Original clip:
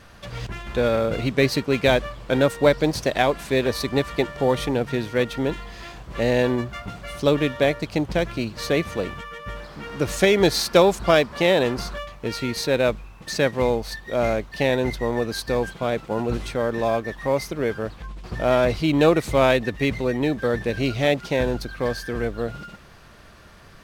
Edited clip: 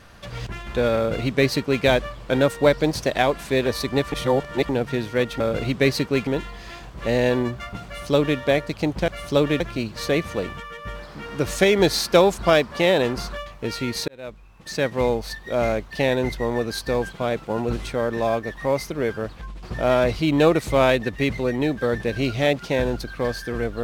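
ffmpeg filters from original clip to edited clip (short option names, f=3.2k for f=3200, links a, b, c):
-filter_complex "[0:a]asplit=8[a][b][c][d][e][f][g][h];[a]atrim=end=4.122[i];[b]atrim=start=4.118:end=4.692,asetpts=PTS-STARTPTS,areverse[j];[c]atrim=start=4.688:end=5.402[k];[d]atrim=start=0.968:end=1.842[l];[e]atrim=start=5.398:end=8.212[m];[f]atrim=start=6.988:end=7.512[n];[g]atrim=start=8.208:end=12.69,asetpts=PTS-STARTPTS,afade=t=out:st=4.478:d=0.004:c=hsin[o];[h]atrim=start=12.69,asetpts=PTS-STARTPTS,afade=t=in:d=0.97[p];[i][j]acrossfade=d=0.004:c1=hsin:c2=hsin[q];[q][k]acrossfade=d=0.004:c1=hsin:c2=hsin[r];[r][l]acrossfade=d=0.004:c1=hsin:c2=hsin[s];[s][m]acrossfade=d=0.004:c1=hsin:c2=hsin[t];[t][n]acrossfade=d=0.004:c1=hsin:c2=hsin[u];[o][p]concat=n=2:v=0:a=1[v];[u][v]acrossfade=d=0.004:c1=hsin:c2=hsin"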